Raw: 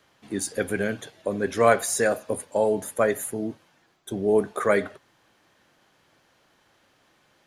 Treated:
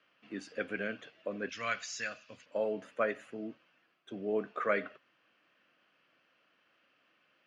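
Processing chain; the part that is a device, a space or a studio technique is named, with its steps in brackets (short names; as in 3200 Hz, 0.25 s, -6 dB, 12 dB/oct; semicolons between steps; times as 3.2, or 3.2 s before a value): kitchen radio (speaker cabinet 230–4500 Hz, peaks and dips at 390 Hz -6 dB, 860 Hz -10 dB, 1300 Hz +4 dB, 2700 Hz +9 dB, 3800 Hz -8 dB); 1.49–2.46 EQ curve 110 Hz 0 dB, 410 Hz -18 dB, 6800 Hz +12 dB, 11000 Hz -26 dB; gain -8 dB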